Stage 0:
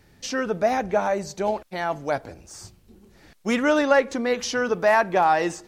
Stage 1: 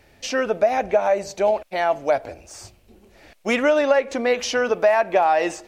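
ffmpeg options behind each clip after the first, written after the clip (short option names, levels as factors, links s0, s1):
-af "equalizer=f=160:t=o:w=0.67:g=-8,equalizer=f=630:t=o:w=0.67:g=9,equalizer=f=2500:t=o:w=0.67:g=7,acompressor=threshold=0.178:ratio=6,volume=1.12"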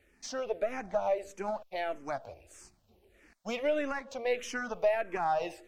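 -filter_complex "[0:a]aeval=exprs='if(lt(val(0),0),0.708*val(0),val(0))':c=same,asplit=2[s0][s1];[s1]afreqshift=-1.6[s2];[s0][s2]amix=inputs=2:normalize=1,volume=0.376"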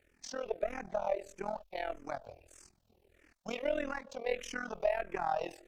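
-af "tremolo=f=41:d=0.889"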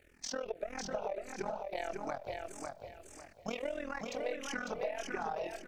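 -filter_complex "[0:a]acompressor=threshold=0.01:ratio=10,asplit=2[s0][s1];[s1]aecho=0:1:550|1100|1650|2200:0.631|0.177|0.0495|0.0139[s2];[s0][s2]amix=inputs=2:normalize=0,volume=1.88"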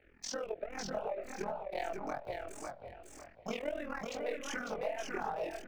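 -filter_complex "[0:a]acrossover=split=250|3500[s0][s1][s2];[s2]aeval=exprs='val(0)*gte(abs(val(0)),0.00119)':c=same[s3];[s0][s1][s3]amix=inputs=3:normalize=0,flanger=delay=16.5:depth=7.6:speed=2.6,volume=1.41"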